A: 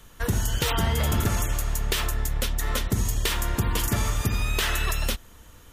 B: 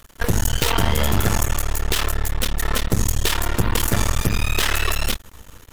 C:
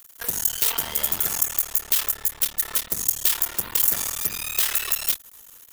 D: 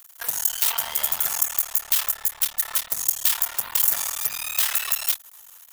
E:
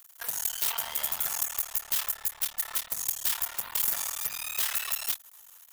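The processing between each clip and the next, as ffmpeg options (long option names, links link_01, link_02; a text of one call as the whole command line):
ffmpeg -i in.wav -af "aeval=exprs='max(val(0),0)':channel_layout=same,volume=9dB" out.wav
ffmpeg -i in.wav -af "aemphasis=mode=production:type=riaa,volume=-11dB" out.wav
ffmpeg -i in.wav -af "lowshelf=frequency=530:width_type=q:width=1.5:gain=-10" out.wav
ffmpeg -i in.wav -af "asoftclip=type=hard:threshold=-14.5dB,volume=-5.5dB" out.wav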